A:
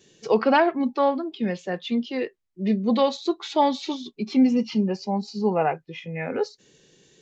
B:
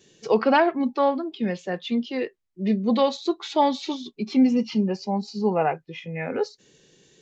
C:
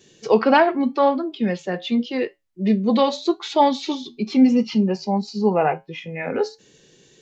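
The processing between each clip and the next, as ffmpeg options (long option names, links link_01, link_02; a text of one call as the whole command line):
ffmpeg -i in.wav -af anull out.wav
ffmpeg -i in.wav -af "flanger=delay=7.9:depth=2.6:regen=-76:speed=0.85:shape=triangular,volume=8dB" out.wav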